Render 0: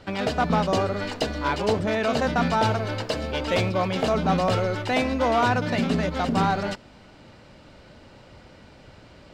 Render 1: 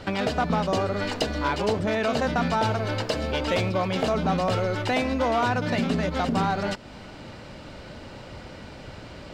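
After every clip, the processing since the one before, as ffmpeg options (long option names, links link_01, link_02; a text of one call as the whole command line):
ffmpeg -i in.wav -af "acompressor=threshold=-36dB:ratio=2,volume=7.5dB" out.wav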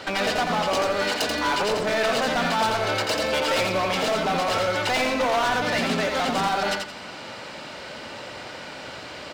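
ffmpeg -i in.wav -filter_complex "[0:a]highpass=frequency=760:poles=1,volume=29dB,asoftclip=hard,volume=-29dB,asplit=2[link_01][link_02];[link_02]aecho=0:1:86|172|258|344:0.596|0.185|0.0572|0.0177[link_03];[link_01][link_03]amix=inputs=2:normalize=0,volume=8dB" out.wav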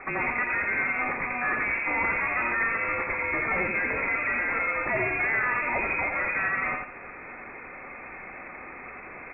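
ffmpeg -i in.wav -af "lowpass=frequency=2300:width_type=q:width=0.5098,lowpass=frequency=2300:width_type=q:width=0.6013,lowpass=frequency=2300:width_type=q:width=0.9,lowpass=frequency=2300:width_type=q:width=2.563,afreqshift=-2700,tiltshelf=frequency=650:gain=5" out.wav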